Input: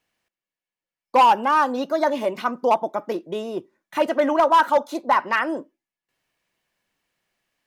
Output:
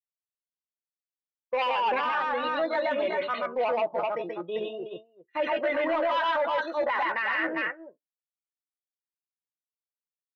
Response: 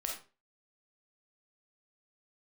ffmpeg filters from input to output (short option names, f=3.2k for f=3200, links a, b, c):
-filter_complex "[0:a]afftdn=nr=25:nf=-37,asplit=2[a][b];[b]adelay=12,volume=-12dB[c];[a][c]amix=inputs=2:normalize=0,asplit=2[d][e];[e]aecho=0:1:93.29|282.8:0.891|0.501[f];[d][f]amix=inputs=2:normalize=0,adynamicequalizer=threshold=0.0355:dfrequency=490:dqfactor=1.8:tfrequency=490:tqfactor=1.8:attack=5:release=100:ratio=0.375:range=2:mode=cutabove:tftype=bell,atempo=0.74,agate=range=-33dB:threshold=-23dB:ratio=3:detection=peak,asplit=2[g][h];[h]asoftclip=type=hard:threshold=-19.5dB,volume=-11.5dB[i];[g][i]amix=inputs=2:normalize=0,flanger=delay=1.6:depth=4.8:regen=56:speed=0.59:shape=sinusoidal,equalizer=f=125:t=o:w=1:g=4,equalizer=f=250:t=o:w=1:g=-8,equalizer=f=500:t=o:w=1:g=6,equalizer=f=1k:t=o:w=1:g=-4,equalizer=f=2k:t=o:w=1:g=10,equalizer=f=4k:t=o:w=1:g=6,equalizer=f=8k:t=o:w=1:g=-10,alimiter=limit=-15dB:level=0:latency=1:release=16,volume=-4.5dB"